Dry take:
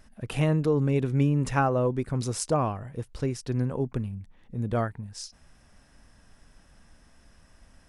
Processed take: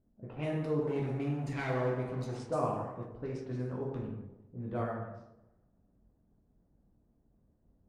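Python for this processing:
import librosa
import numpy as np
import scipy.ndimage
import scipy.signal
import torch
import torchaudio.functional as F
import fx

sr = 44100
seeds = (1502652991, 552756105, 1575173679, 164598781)

y = fx.lower_of_two(x, sr, delay_ms=0.46, at=(0.82, 2.36))
y = fx.highpass(y, sr, hz=130.0, slope=6)
y = fx.low_shelf(y, sr, hz=320.0, db=-9.0)
y = fx.rev_plate(y, sr, seeds[0], rt60_s=1.1, hf_ratio=0.65, predelay_ms=0, drr_db=-4.0)
y = fx.hpss(y, sr, part='harmonic', gain_db=-4)
y = fx.tilt_eq(y, sr, slope=-2.5)
y = fx.env_lowpass(y, sr, base_hz=340.0, full_db=-22.5)
y = fx.echo_warbled(y, sr, ms=120, feedback_pct=53, rate_hz=2.8, cents=99, wet_db=-23)
y = y * librosa.db_to_amplitude(-8.5)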